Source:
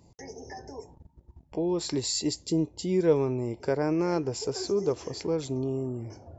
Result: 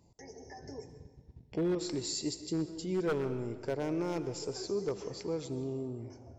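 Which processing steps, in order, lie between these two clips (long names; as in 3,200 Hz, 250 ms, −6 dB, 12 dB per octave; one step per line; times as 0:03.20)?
0:00.62–0:01.75: octave-band graphic EQ 125/250/500/1,000/2,000/4,000 Hz +11/+4/+3/−7/+9/+10 dB
wave folding −18 dBFS
convolution reverb RT60 1.4 s, pre-delay 81 ms, DRR 11.5 dB
feedback echo with a swinging delay time 81 ms, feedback 35%, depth 188 cents, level −22 dB
level −7 dB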